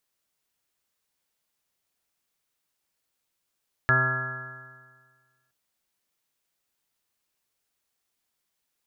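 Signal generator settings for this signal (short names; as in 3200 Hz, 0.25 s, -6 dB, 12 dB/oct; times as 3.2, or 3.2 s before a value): stretched partials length 1.62 s, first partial 128 Hz, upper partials -13/-10/-18/-8.5/-17/-12/-14/-8/1/-15/5 dB, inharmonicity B 0.0014, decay 1.63 s, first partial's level -23.5 dB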